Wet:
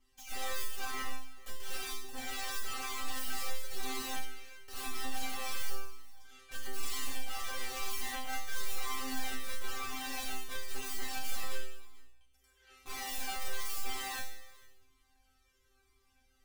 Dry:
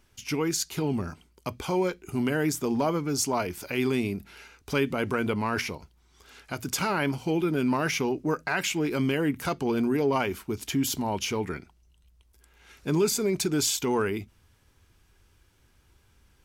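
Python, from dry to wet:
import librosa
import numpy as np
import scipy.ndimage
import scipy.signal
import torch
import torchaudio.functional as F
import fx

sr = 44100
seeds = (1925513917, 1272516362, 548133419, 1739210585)

p1 = fx.hum_notches(x, sr, base_hz=50, count=2)
p2 = fx.over_compress(p1, sr, threshold_db=-30.0, ratio=-1.0)
p3 = p1 + (p2 * 10.0 ** (2.0 / 20.0))
p4 = fx.cheby_harmonics(p3, sr, harmonics=(4, 5, 7, 8), levels_db=(-13, -26, -33, -14), full_scale_db=-6.5)
p5 = (np.mod(10.0 ** (20.5 / 20.0) * p4 + 1.0, 2.0) - 1.0) / 10.0 ** (20.5 / 20.0)
p6 = fx.resonator_bank(p5, sr, root=60, chord='fifth', decay_s=0.73)
p7 = p6 + fx.echo_single(p6, sr, ms=434, db=-21.5, dry=0)
p8 = fx.comb_cascade(p7, sr, direction='falling', hz=1.0)
y = p8 * 10.0 ** (9.5 / 20.0)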